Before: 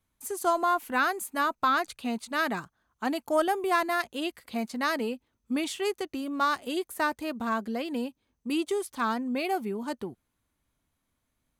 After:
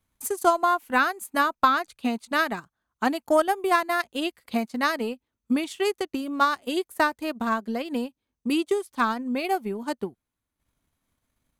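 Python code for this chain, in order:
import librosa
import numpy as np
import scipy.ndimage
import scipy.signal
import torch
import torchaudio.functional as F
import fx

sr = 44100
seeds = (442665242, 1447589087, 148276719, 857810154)

y = fx.transient(x, sr, attack_db=6, sustain_db=-9)
y = y * librosa.db_to_amplitude(2.0)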